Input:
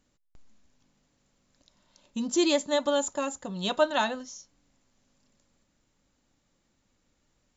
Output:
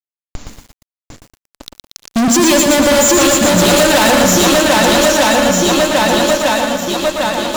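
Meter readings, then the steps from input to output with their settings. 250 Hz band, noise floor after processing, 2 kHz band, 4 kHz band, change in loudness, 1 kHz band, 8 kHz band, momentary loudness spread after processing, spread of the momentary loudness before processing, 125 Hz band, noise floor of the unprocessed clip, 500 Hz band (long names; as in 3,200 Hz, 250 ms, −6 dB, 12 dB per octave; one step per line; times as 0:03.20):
+20.0 dB, below −85 dBFS, +22.5 dB, +20.5 dB, +17.0 dB, +20.5 dB, can't be measured, 7 LU, 15 LU, +25.5 dB, −73 dBFS, +18.5 dB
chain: feedback echo with a long and a short gap by turns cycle 1,251 ms, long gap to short 1.5 to 1, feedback 40%, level −6 dB
fuzz pedal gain 45 dB, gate −54 dBFS
feedback echo at a low word length 117 ms, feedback 55%, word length 7 bits, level −4.5 dB
level +2.5 dB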